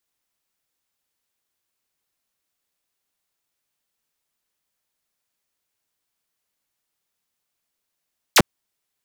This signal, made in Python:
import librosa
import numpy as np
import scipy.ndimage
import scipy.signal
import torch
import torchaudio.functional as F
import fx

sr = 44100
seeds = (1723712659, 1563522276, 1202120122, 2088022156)

y = fx.laser_zap(sr, level_db=-7.0, start_hz=8200.0, end_hz=89.0, length_s=0.05, wave='saw')